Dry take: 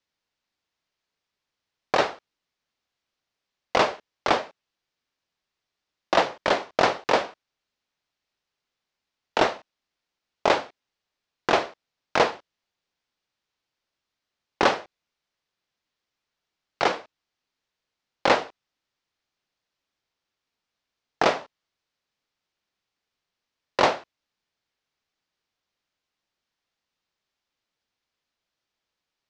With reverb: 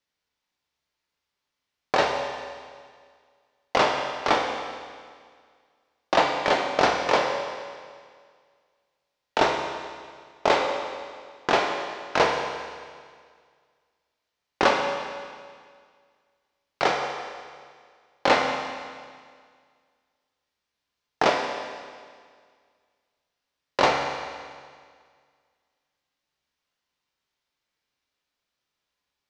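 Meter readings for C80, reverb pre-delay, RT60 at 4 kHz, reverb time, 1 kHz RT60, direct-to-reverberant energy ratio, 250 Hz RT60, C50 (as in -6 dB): 5.0 dB, 6 ms, 1.9 s, 1.9 s, 1.9 s, 1.0 dB, 1.9 s, 3.5 dB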